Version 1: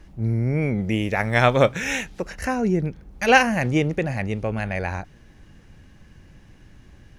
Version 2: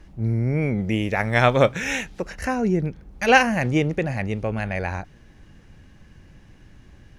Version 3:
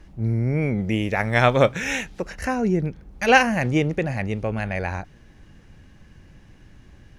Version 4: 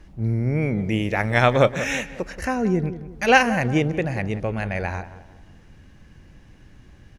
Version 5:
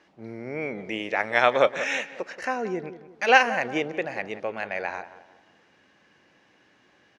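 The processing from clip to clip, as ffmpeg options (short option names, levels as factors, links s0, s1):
-af "highshelf=f=8800:g=-3.5"
-af anull
-filter_complex "[0:a]asplit=2[s0][s1];[s1]adelay=179,lowpass=f=1600:p=1,volume=0.224,asplit=2[s2][s3];[s3]adelay=179,lowpass=f=1600:p=1,volume=0.41,asplit=2[s4][s5];[s5]adelay=179,lowpass=f=1600:p=1,volume=0.41,asplit=2[s6][s7];[s7]adelay=179,lowpass=f=1600:p=1,volume=0.41[s8];[s0][s2][s4][s6][s8]amix=inputs=5:normalize=0"
-af "highpass=440,lowpass=5300,volume=0.891"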